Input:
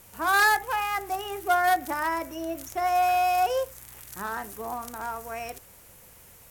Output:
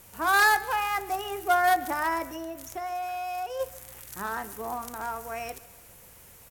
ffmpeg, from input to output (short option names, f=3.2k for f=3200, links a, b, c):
-filter_complex "[0:a]asplit=3[a][b][c];[a]afade=t=out:st=2.35:d=0.02[d];[b]acompressor=threshold=-35dB:ratio=3,afade=t=in:st=2.35:d=0.02,afade=t=out:st=3.59:d=0.02[e];[c]afade=t=in:st=3.59:d=0.02[f];[d][e][f]amix=inputs=3:normalize=0,aecho=1:1:142|284|426|568:0.1|0.049|0.024|0.0118"